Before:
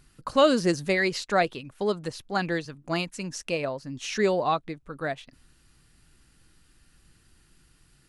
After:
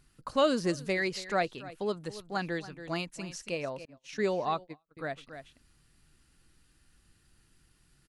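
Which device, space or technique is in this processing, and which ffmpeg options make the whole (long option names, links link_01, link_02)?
ducked delay: -filter_complex "[0:a]asplit=3[link_01][link_02][link_03];[link_02]adelay=280,volume=-6.5dB[link_04];[link_03]apad=whole_len=368708[link_05];[link_04][link_05]sidechaincompress=threshold=-33dB:ratio=12:attack=5.7:release=561[link_06];[link_01][link_06]amix=inputs=2:normalize=0,asettb=1/sr,asplit=3[link_07][link_08][link_09];[link_07]atrim=end=3.854[link_10];[link_08]atrim=start=3.85:end=4.97,asetpts=PTS-STARTPTS,afade=type=in:duration=0.004:curve=qsin,afade=type=out:start_time=1.116:duration=0.004:curve=qsin,agate=range=-38dB:threshold=-32dB:ratio=16:detection=peak[link_11];[link_09]atrim=start=4.966[link_12];[link_10][link_11]acrossfade=duration=0.004:curve1=hsin:curve2=qsin[link_13];[link_13][link_12]acrossfade=duration=0.004:curve1=qsin:curve2=hsin,volume=-6dB"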